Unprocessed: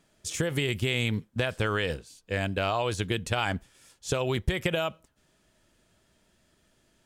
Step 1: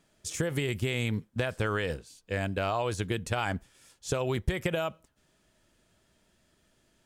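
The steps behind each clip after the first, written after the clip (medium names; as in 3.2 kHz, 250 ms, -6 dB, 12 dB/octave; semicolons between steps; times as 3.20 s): dynamic bell 3.2 kHz, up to -5 dB, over -43 dBFS, Q 1.4; trim -1.5 dB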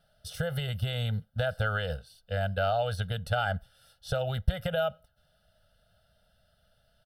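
static phaser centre 1.5 kHz, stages 8; comb 1.4 ms, depth 80%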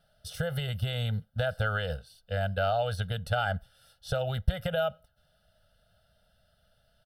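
no audible change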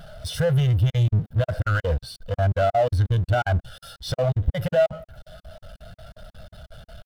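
power-law waveshaper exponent 0.35; crackling interface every 0.18 s, samples 2048, zero, from 0.90 s; spectral contrast expander 1.5:1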